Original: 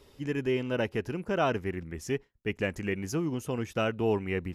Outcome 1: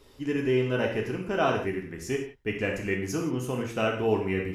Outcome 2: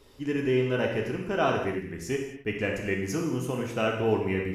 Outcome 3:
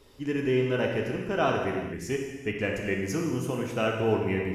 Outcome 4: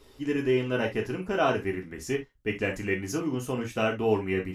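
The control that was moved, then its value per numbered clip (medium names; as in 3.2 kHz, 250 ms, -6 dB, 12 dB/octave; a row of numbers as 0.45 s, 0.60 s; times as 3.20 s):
gated-style reverb, gate: 200 ms, 300 ms, 460 ms, 90 ms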